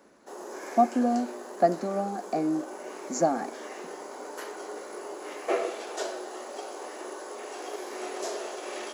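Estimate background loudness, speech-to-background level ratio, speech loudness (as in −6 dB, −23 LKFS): −37.5 LKFS, 9.5 dB, −28.0 LKFS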